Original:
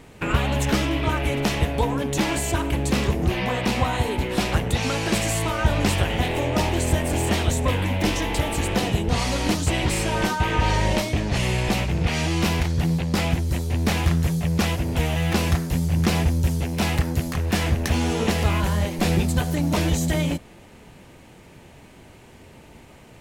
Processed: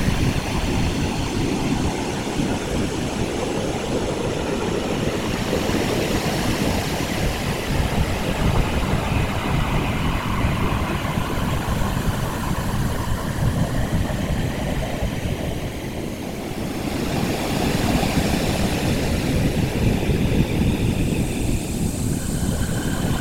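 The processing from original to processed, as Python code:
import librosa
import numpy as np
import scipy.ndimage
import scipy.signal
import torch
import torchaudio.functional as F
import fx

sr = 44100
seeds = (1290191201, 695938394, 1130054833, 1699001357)

y = fx.paulstretch(x, sr, seeds[0], factor=16.0, window_s=0.25, from_s=17.92)
y = fx.whisperise(y, sr, seeds[1])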